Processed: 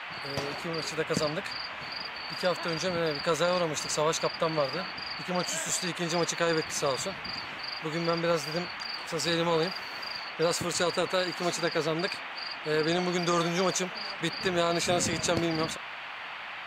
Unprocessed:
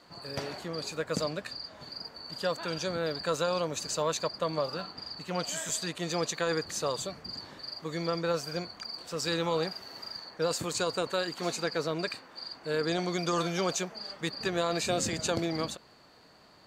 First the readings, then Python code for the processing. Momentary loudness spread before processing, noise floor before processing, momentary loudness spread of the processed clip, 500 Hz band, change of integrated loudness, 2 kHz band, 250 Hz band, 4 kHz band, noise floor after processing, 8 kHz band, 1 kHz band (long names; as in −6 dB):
10 LU, −58 dBFS, 8 LU, +2.5 dB, +3.0 dB, +6.0 dB, +2.5 dB, +3.0 dB, −40 dBFS, +2.5 dB, +4.0 dB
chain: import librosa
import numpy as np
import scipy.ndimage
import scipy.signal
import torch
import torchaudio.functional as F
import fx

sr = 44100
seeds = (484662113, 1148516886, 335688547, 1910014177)

y = fx.cheby_harmonics(x, sr, harmonics=(3,), levels_db=(-24,), full_scale_db=-15.0)
y = fx.dmg_noise_band(y, sr, seeds[0], low_hz=660.0, high_hz=2900.0, level_db=-44.0)
y = y * 10.0 ** (4.0 / 20.0)